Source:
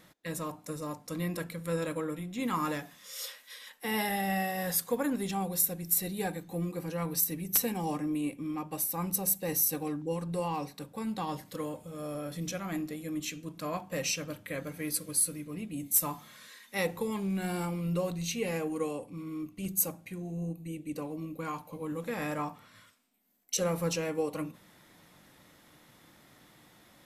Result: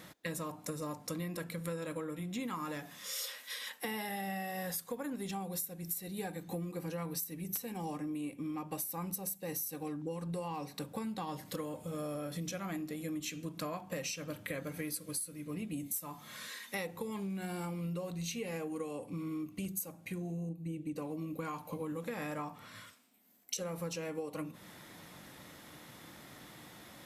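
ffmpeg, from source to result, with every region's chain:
-filter_complex "[0:a]asettb=1/sr,asplit=3[a][b][c];[a]atrim=end=20.494[d];[b]atrim=start=20.49:end=20.97,asetpts=PTS-STARTPTS,afade=t=in:d=0.004:c=qsin,afade=t=out:st=0.476:d=0.004:c=qsin,lowpass=f=3.8k:p=1,equalizer=f=1.4k:w=0.34:g=-5.5,aecho=1:1:6.2:0.33,atrim=end_sample=21168[e];[c]atrim=start=20.966[f];[d][e]acrossfade=d=0.004:c1=hsin:c2=qsin[g];[g][f]acrossfade=d=0.004:c1=qsin:c2=hsin,highpass=46,acompressor=threshold=-42dB:ratio=12,volume=6dB"

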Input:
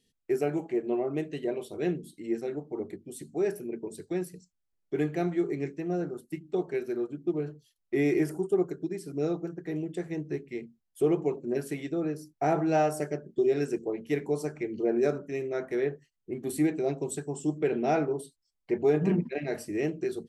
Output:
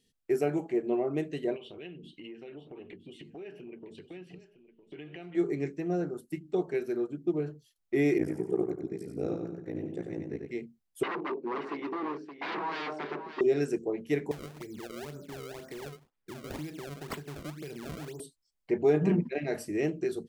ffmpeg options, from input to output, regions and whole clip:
-filter_complex "[0:a]asettb=1/sr,asplit=3[a][b][c];[a]atrim=end=1.564[d];[b]atrim=start=1.56:end=5.35,asetpts=PTS-STARTPTS,afade=t=in:d=0.004:c=qsin,afade=t=out:st=3.786:d=0.004:c=qsin,acompressor=threshold=-43dB:ratio=6:attack=3.2:release=140:knee=1:detection=peak,lowpass=f=2.9k:t=q:w=9,aecho=1:1:958:0.2,atrim=end_sample=167139[e];[c]atrim=start=5.346[f];[d][e]acrossfade=d=0.004:c1=hsin:c2=qsin[g];[g][f]acrossfade=d=0.004:c1=qsin:c2=hsin,asettb=1/sr,asplit=3[h][i][j];[h]atrim=end=8.184[k];[i]atrim=start=8.18:end=10.51,asetpts=PTS-STARTPTS,afade=t=in:d=0.004:c=qsin,afade=t=out:st=2.326:d=0.004:c=qsin,highshelf=f=2.2k:g=-7,tremolo=f=58:d=1,aecho=1:1:93|186|279|372|465:0.562|0.208|0.077|0.0285|0.0105,atrim=end_sample=102753[l];[j]atrim=start=10.506[m];[k][l]acrossfade=d=0.004:c1=hsin:c2=qsin[n];[n][m]acrossfade=d=0.004:c1=qsin:c2=hsin,asettb=1/sr,asplit=3[o][p][q];[o]atrim=end=11.034[r];[p]atrim=start=11.03:end=13.41,asetpts=PTS-STARTPTS,afade=t=in:d=0.004:c=qsin,afade=t=out:st=2.376:d=0.004:c=qsin,aeval=exprs='0.0299*(abs(mod(val(0)/0.0299+3,4)-2)-1)':c=same,highpass=f=210:w=0.5412,highpass=f=210:w=1.3066,equalizer=f=380:t=q:w=4:g=5,equalizer=f=600:t=q:w=4:g=-3,equalizer=f=990:t=q:w=4:g=6,equalizer=f=3.3k:t=q:w=4:g=-6,lowpass=f=3.9k:w=0.5412,lowpass=f=3.9k:w=1.3066,aecho=1:1:571:0.299,atrim=end_sample=104958[s];[q]atrim=start=13.406[t];[r][s]acrossfade=d=0.004:c1=hsin:c2=qsin[u];[u][t]acrossfade=d=0.004:c1=qsin:c2=hsin,asettb=1/sr,asplit=3[v][w][x];[v]atrim=end=14.314[y];[w]atrim=start=14.31:end=18.2,asetpts=PTS-STARTPTS,afade=t=in:d=0.004:c=qsin,afade=t=out:st=3.886:d=0.004:c=qsin,acrossover=split=130|3000[z][aa][ab];[aa]acompressor=threshold=-40dB:ratio=10:attack=3.2:release=140:knee=2.83:detection=peak[ac];[z][ac][ab]amix=inputs=3:normalize=0,acrusher=samples=29:mix=1:aa=0.000001:lfo=1:lforange=46.4:lforate=2[ad];[x]atrim=start=18.196[ae];[y][ad]acrossfade=d=0.004:c1=hsin:c2=qsin[af];[af][ae]acrossfade=d=0.004:c1=qsin:c2=hsin"

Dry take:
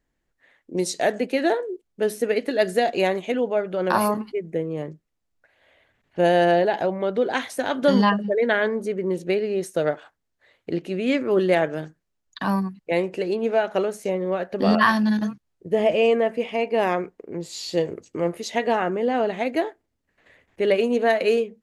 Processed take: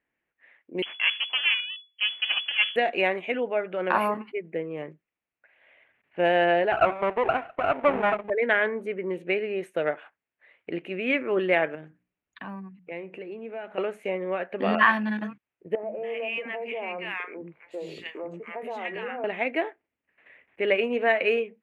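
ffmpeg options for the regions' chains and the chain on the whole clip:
-filter_complex "[0:a]asettb=1/sr,asplit=3[a][b][c];[a]atrim=end=0.824[d];[b]atrim=start=0.82:end=2.76,asetpts=PTS-STARTPTS,afade=t=in:d=0.004:c=qsin,afade=t=out:st=1.936:d=0.004:c=qsin,bandreject=f=2k:w=9.2,aeval=exprs='max(val(0),0)':c=same,lowpass=f=2.9k:t=q:w=0.5098,lowpass=f=2.9k:t=q:w=0.6013,lowpass=f=2.9k:t=q:w=0.9,lowpass=f=2.9k:t=q:w=2.563,afreqshift=-3400[e];[c]atrim=start=2.756[f];[d][e]acrossfade=d=0.004:c1=hsin:c2=qsin[g];[g][f]acrossfade=d=0.004:c1=qsin:c2=hsin,asettb=1/sr,asplit=3[h][i][j];[h]atrim=end=6.724[k];[i]atrim=start=6.72:end=8.3,asetpts=PTS-STARTPTS,afade=t=in:d=0.004:c=qsin,afade=t=out:st=1.576:d=0.004:c=qsin,lowpass=f=660:t=q:w=6.2,aecho=1:1:2.7:0.48,atrim=end_sample=69678,aeval=exprs='max(val(0),0)':c=same[l];[j]atrim=start=8.296[m];[k][l]acrossfade=d=0.004:c1=hsin:c2=qsin[n];[n][m]acrossfade=d=0.004:c1=qsin:c2=hsin,asettb=1/sr,asplit=3[o][p][q];[o]atrim=end=11.754[r];[p]atrim=start=11.75:end=13.78,asetpts=PTS-STARTPTS,afade=t=in:d=0.004:c=qsin,afade=t=out:st=2.026:d=0.004:c=qsin,lowshelf=f=340:g=11.5,bandreject=f=60:t=h:w=6,bandreject=f=120:t=h:w=6,bandreject=f=180:t=h:w=6,bandreject=f=240:t=h:w=6,bandreject=f=300:t=h:w=6,acompressor=threshold=-41dB:ratio=2:attack=3.2:release=140:knee=1:detection=peak[s];[q]atrim=start=13.776[t];[r][s]acrossfade=d=0.004:c1=hsin:c2=qsin[u];[u][t]acrossfade=d=0.004:c1=qsin:c2=hsin,asettb=1/sr,asplit=3[v][w][x];[v]atrim=end=15.754[y];[w]atrim=start=15.75:end=19.24,asetpts=PTS-STARTPTS,afade=t=in:d=0.004:c=qsin,afade=t=out:st=3.486:d=0.004:c=qsin,acrossover=split=300|1100[z][aa][ab];[z]adelay=80[ac];[ab]adelay=280[ad];[ac][aa][ad]amix=inputs=3:normalize=0,atrim=end_sample=153909,acompressor=threshold=-27dB:ratio=4:attack=3.2:release=140:knee=1:detection=peak,asplit=2[ae][af];[af]adelay=15,volume=-14dB[ag];[ae][ag]amix=inputs=2:normalize=0,atrim=end_sample=153909[ah];[x]atrim=start=19.236[ai];[y][ah]acrossfade=d=0.004:c1=hsin:c2=qsin[aj];[aj][ai]acrossfade=d=0.004:c1=qsin:c2=hsin,highpass=f=330:p=1,highshelf=f=3.6k:t=q:w=3:g=-13.5,volume=-3dB"

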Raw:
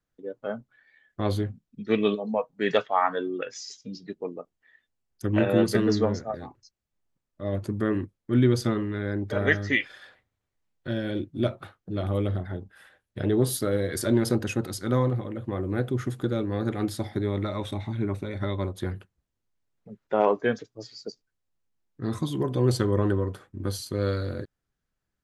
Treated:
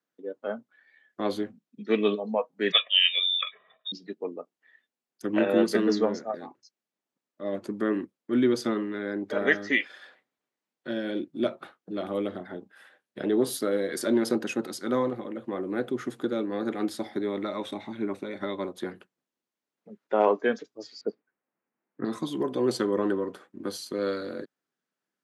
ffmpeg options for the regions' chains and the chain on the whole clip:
-filter_complex "[0:a]asettb=1/sr,asplit=3[a][b][c];[a]atrim=end=2.724[d];[b]atrim=start=2.72:end=3.92,asetpts=PTS-STARTPTS,afade=t=in:d=0.004:c=qsin,afade=t=out:st=1.196:d=0.004:c=qsin,lowpass=f=3.3k:t=q:w=0.5098,lowpass=f=3.3k:t=q:w=0.6013,lowpass=f=3.3k:t=q:w=0.9,lowpass=f=3.3k:t=q:w=2.563,afreqshift=-3900,aecho=1:1:1.7:0.86,atrim=end_sample=52920[e];[c]atrim=start=3.916[f];[d][e]acrossfade=d=0.004:c1=hsin:c2=qsin[g];[g][f]acrossfade=d=0.004:c1=qsin:c2=hsin,asettb=1/sr,asplit=3[h][i][j];[h]atrim=end=21.014[k];[i]atrim=start=21.01:end=22.05,asetpts=PTS-STARTPTS,afade=t=in:d=0.004:c=qsin,afade=t=out:st=1.036:d=0.004:c=qsin,acontrast=82,lowpass=f=2.2k:w=0.5412,lowpass=f=2.2k:w=1.3066[l];[j]atrim=start=22.046[m];[k][l]acrossfade=d=0.004:c1=hsin:c2=qsin[n];[n][m]acrossfade=d=0.004:c1=qsin:c2=hsin,highpass=f=210:w=0.5412,highpass=f=210:w=1.3066,highshelf=f=8.9k:g=-7"

